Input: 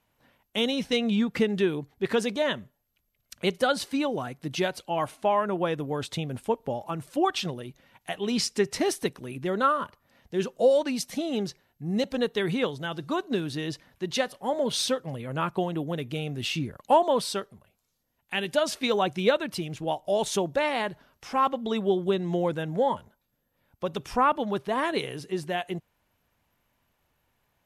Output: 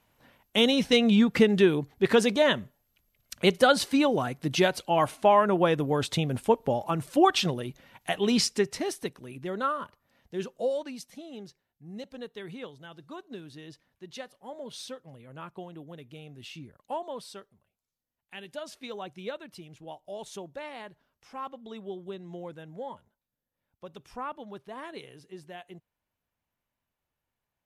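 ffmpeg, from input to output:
-af "volume=4dB,afade=t=out:st=8.24:d=0.56:silence=0.334965,afade=t=out:st=10.36:d=0.78:silence=0.375837"

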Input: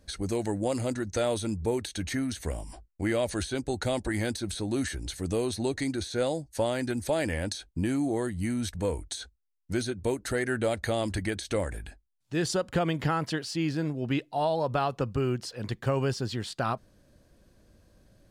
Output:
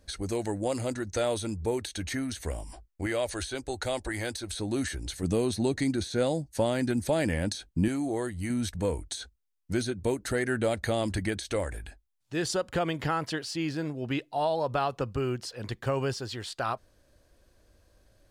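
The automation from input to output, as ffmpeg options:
-af "asetnsamples=n=441:p=0,asendcmd='3.06 equalizer g -12.5;4.59 equalizer g -1.5;5.23 equalizer g 5.5;7.88 equalizer g -5.5;8.5 equalizer g 1.5;11.38 equalizer g -5;16.19 equalizer g -12',equalizer=f=180:t=o:w=1.3:g=-4"

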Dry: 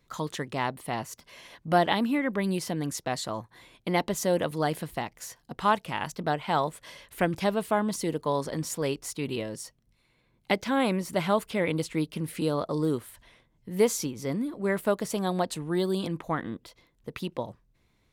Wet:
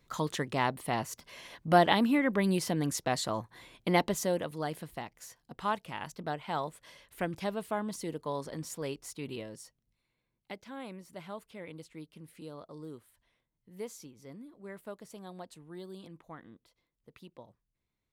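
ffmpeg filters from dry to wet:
-af "afade=t=out:st=3.96:d=0.48:silence=0.398107,afade=t=out:st=9.31:d=1.22:silence=0.316228"

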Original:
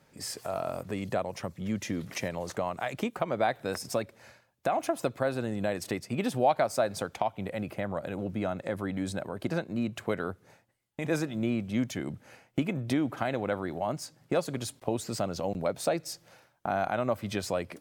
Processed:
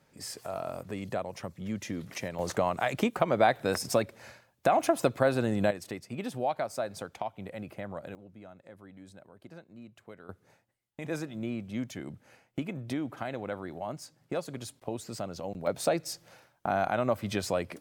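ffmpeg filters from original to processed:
-af "asetnsamples=n=441:p=0,asendcmd='2.39 volume volume 4dB;5.71 volume volume -6dB;8.15 volume volume -18dB;10.29 volume volume -5.5dB;15.67 volume volume 1dB',volume=-3dB"

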